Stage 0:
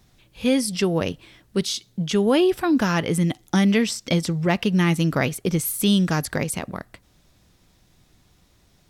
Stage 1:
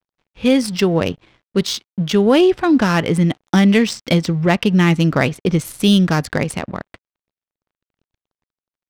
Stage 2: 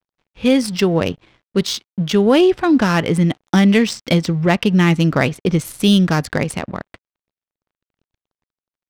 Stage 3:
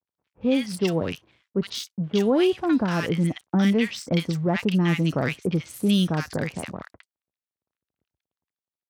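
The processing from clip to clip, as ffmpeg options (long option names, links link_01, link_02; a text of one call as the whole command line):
ffmpeg -i in.wav -af "aeval=exprs='sgn(val(0))*max(abs(val(0))-0.00316,0)':channel_layout=same,adynamicsmooth=sensitivity=3.5:basefreq=3200,volume=6dB" out.wav
ffmpeg -i in.wav -af anull out.wav
ffmpeg -i in.wav -filter_complex "[0:a]highpass=frequency=59:width=0.5412,highpass=frequency=59:width=1.3066,acrossover=split=1200|5900[link_01][link_02][link_03];[link_02]adelay=60[link_04];[link_03]adelay=90[link_05];[link_01][link_04][link_05]amix=inputs=3:normalize=0,volume=-7.5dB" out.wav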